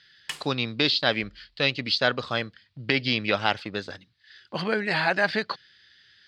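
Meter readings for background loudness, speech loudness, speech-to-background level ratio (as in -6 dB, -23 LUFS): -38.0 LUFS, -25.5 LUFS, 12.5 dB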